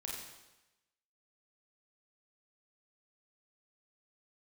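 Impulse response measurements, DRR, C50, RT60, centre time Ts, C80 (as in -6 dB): -4.0 dB, 0.5 dB, 1.0 s, 66 ms, 3.0 dB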